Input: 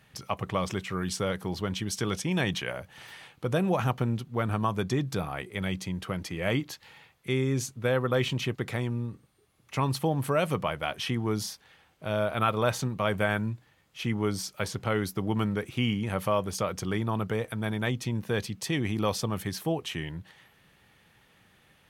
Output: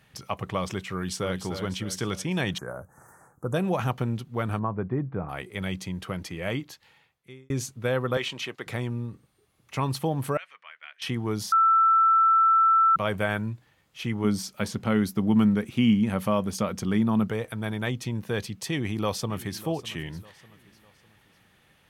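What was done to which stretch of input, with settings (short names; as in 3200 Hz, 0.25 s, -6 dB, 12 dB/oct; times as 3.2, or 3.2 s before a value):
0.9–1.4 echo throw 0.3 s, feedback 45%, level -8 dB
2.58–3.54 Chebyshev band-stop 1400–7000 Hz, order 3
4.59–5.29 Bessel low-pass 1200 Hz, order 6
6.21–7.5 fade out
8.17–8.67 weighting filter A
10.37–11.02 ladder band-pass 2200 Hz, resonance 45%
11.52–12.96 bleep 1330 Hz -16 dBFS
14.24–17.3 bell 220 Hz +12 dB 0.44 oct
18.69–19.65 echo throw 0.6 s, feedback 40%, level -17.5 dB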